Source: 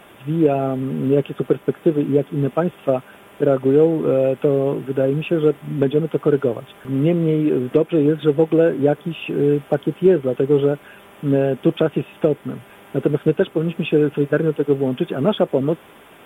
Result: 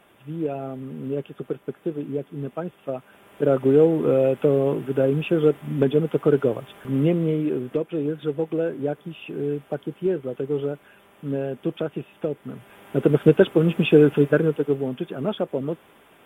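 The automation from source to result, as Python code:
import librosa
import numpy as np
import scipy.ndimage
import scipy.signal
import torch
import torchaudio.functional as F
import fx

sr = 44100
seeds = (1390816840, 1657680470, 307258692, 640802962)

y = fx.gain(x, sr, db=fx.line((2.93, -11.0), (3.57, -2.0), (6.95, -2.0), (7.88, -9.5), (12.33, -9.5), (13.23, 2.0), (14.12, 2.0), (14.97, -8.0)))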